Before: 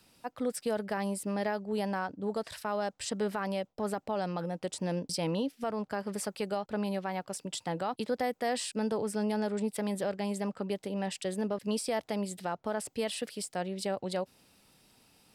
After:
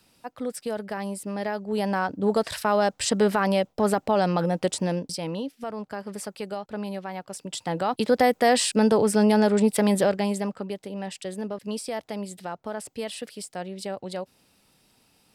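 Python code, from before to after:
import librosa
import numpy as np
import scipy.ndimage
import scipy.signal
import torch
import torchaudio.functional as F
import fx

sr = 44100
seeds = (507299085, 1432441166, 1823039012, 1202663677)

y = fx.gain(x, sr, db=fx.line((1.34, 1.5), (2.28, 11.0), (4.67, 11.0), (5.21, 0.5), (7.27, 0.5), (8.19, 12.0), (10.01, 12.0), (10.76, 0.5)))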